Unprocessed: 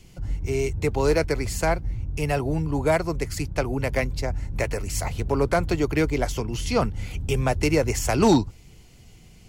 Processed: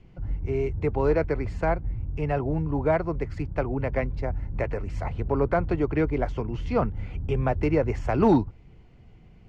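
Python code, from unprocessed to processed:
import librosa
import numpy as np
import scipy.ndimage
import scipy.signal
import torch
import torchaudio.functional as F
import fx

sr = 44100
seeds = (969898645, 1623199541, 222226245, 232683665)

y = scipy.signal.sosfilt(scipy.signal.butter(2, 1700.0, 'lowpass', fs=sr, output='sos'), x)
y = y * 10.0 ** (-1.5 / 20.0)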